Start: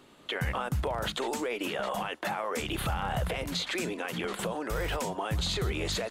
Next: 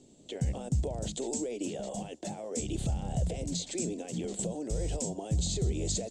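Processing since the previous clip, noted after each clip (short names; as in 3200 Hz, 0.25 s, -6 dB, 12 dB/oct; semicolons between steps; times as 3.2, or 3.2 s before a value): EQ curve 240 Hz 0 dB, 710 Hz -8 dB, 1200 Hz -30 dB, 4200 Hz -8 dB, 7800 Hz +7 dB, 12000 Hz -27 dB; gain +2 dB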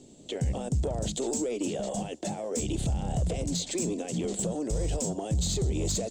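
in parallel at -0.5 dB: limiter -27 dBFS, peak gain reduction 7 dB; on the sum: soft clip -20 dBFS, distortion -20 dB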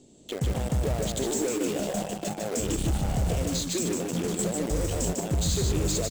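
in parallel at -5 dB: bit-crush 5-bit; on the sum: echo 0.149 s -4 dB; gain -3 dB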